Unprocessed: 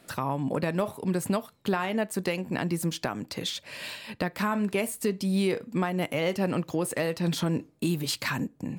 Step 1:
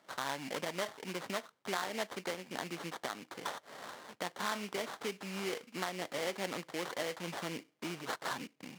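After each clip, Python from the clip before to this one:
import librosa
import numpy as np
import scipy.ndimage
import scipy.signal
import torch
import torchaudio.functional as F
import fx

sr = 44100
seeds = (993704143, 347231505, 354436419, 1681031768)

y = fx.sample_hold(x, sr, seeds[0], rate_hz=2600.0, jitter_pct=20)
y = fx.weighting(y, sr, curve='A')
y = y * librosa.db_to_amplitude(-6.5)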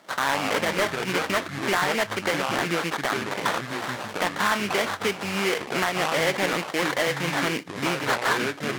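y = fx.echo_pitch(x, sr, ms=90, semitones=-5, count=2, db_per_echo=-6.0)
y = fx.dynamic_eq(y, sr, hz=1800.0, q=0.79, threshold_db=-49.0, ratio=4.0, max_db=5)
y = fx.fold_sine(y, sr, drive_db=6, ceiling_db=-15.0)
y = y * librosa.db_to_amplitude(2.5)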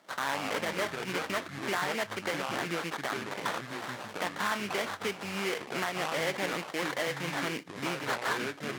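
y = scipy.signal.sosfilt(scipy.signal.butter(2, 74.0, 'highpass', fs=sr, output='sos'), x)
y = y * librosa.db_to_amplitude(-8.0)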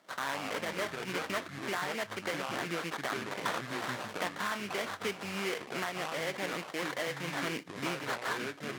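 y = fx.notch(x, sr, hz=850.0, q=26.0)
y = fx.rider(y, sr, range_db=10, speed_s=0.5)
y = y * librosa.db_to_amplitude(-2.5)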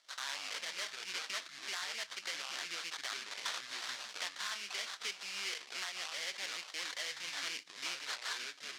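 y = fx.bandpass_q(x, sr, hz=5000.0, q=1.3)
y = y * librosa.db_to_amplitude(5.0)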